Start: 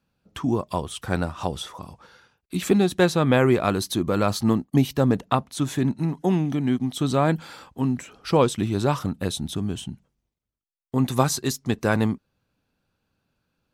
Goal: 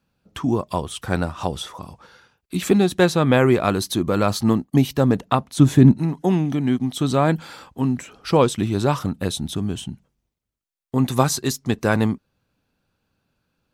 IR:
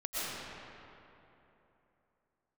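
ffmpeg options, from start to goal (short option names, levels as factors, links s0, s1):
-filter_complex "[0:a]asettb=1/sr,asplit=3[s0][s1][s2];[s0]atrim=end=5.584[s3];[s1]atrim=start=5.58:end=5.98,asetpts=PTS-STARTPTS,afade=t=in:d=0.004:c=qsin,afade=t=out:st=0.396:d=0.004:c=qsin,lowshelf=f=430:g=11.5[s4];[s2]atrim=start=5.976[s5];[s3][s4]acrossfade=d=0.004:c1=hsin:c2=qsin[s6];[s6][s5]acrossfade=d=0.004:c1=qsin:c2=hsin,volume=1.33"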